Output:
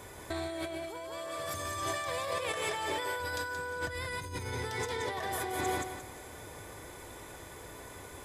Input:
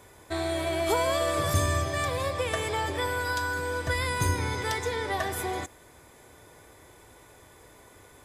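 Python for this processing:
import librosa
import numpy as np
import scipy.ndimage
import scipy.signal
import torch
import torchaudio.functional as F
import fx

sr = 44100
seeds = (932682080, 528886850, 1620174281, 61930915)

y = fx.low_shelf(x, sr, hz=270.0, db=-11.5, at=(1.18, 3.2))
y = fx.echo_feedback(y, sr, ms=176, feedback_pct=30, wet_db=-5.5)
y = fx.over_compress(y, sr, threshold_db=-35.0, ratio=-1.0)
y = y * librosa.db_to_amplitude(-1.5)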